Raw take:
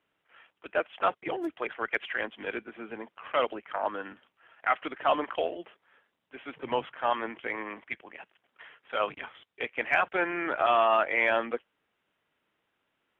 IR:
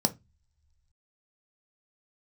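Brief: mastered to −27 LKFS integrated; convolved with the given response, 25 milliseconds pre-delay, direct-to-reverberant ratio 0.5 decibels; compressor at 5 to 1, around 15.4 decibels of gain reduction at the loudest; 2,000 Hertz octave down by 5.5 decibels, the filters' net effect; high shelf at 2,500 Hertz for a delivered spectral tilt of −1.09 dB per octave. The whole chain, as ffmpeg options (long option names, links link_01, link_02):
-filter_complex "[0:a]equalizer=frequency=2000:width_type=o:gain=-5,highshelf=frequency=2500:gain=-4.5,acompressor=threshold=-39dB:ratio=5,asplit=2[link_01][link_02];[1:a]atrim=start_sample=2205,adelay=25[link_03];[link_02][link_03]afir=irnorm=-1:irlink=0,volume=-8.5dB[link_04];[link_01][link_04]amix=inputs=2:normalize=0,volume=12.5dB"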